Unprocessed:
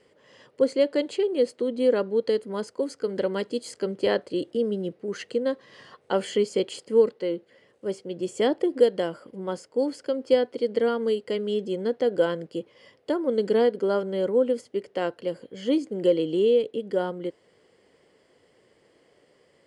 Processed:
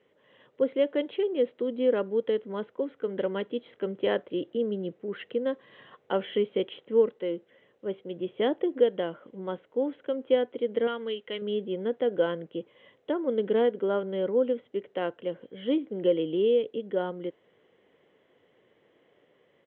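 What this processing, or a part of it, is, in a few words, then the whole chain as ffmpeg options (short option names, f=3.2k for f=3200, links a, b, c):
Bluetooth headset: -filter_complex "[0:a]asettb=1/sr,asplit=3[a][b][c];[a]atrim=end=10.874[d];[b]atrim=start=10.87:end=11.42,asetpts=PTS-STARTPTS,afade=t=in:d=0.004:c=qsin,afade=t=out:st=0.546:d=0.004:c=qsin,tiltshelf=f=1.3k:g=-7[e];[c]atrim=start=11.416[f];[d][e]acrossfade=d=0.004:c1=hsin:c2=qsin[g];[g][f]acrossfade=d=0.004:c1=qsin:c2=hsin,highpass=100,dynaudnorm=f=370:g=3:m=3dB,aresample=8000,aresample=44100,volume=-6dB" -ar 16000 -c:a sbc -b:a 64k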